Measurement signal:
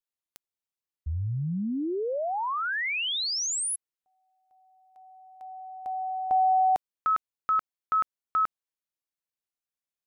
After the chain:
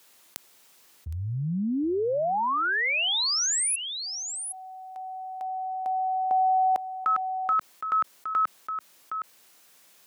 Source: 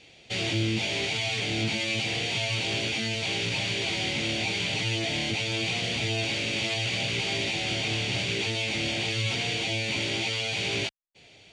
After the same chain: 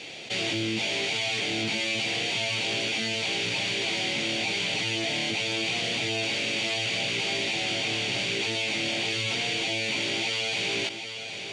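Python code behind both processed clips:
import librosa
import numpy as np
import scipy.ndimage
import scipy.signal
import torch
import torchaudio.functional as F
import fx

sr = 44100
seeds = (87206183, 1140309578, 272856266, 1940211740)

p1 = scipy.signal.sosfilt(scipy.signal.bessel(2, 210.0, 'highpass', norm='mag', fs=sr, output='sos'), x)
p2 = p1 + fx.echo_single(p1, sr, ms=765, db=-16.5, dry=0)
y = fx.env_flatten(p2, sr, amount_pct=50)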